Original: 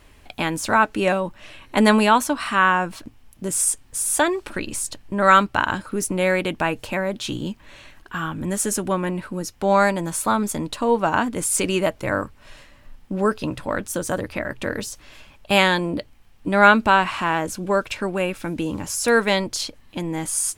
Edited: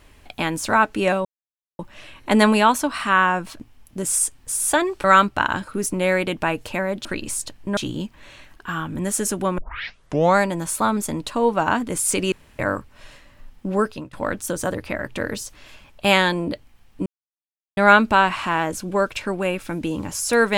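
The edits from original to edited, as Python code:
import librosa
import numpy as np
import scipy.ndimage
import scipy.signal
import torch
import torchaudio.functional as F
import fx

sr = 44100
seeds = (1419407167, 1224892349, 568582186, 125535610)

y = fx.edit(x, sr, fx.insert_silence(at_s=1.25, length_s=0.54),
    fx.move(start_s=4.5, length_s=0.72, to_s=7.23),
    fx.tape_start(start_s=9.04, length_s=0.78),
    fx.room_tone_fill(start_s=11.78, length_s=0.27),
    fx.fade_out_to(start_s=13.26, length_s=0.33, floor_db=-20.0),
    fx.insert_silence(at_s=16.52, length_s=0.71), tone=tone)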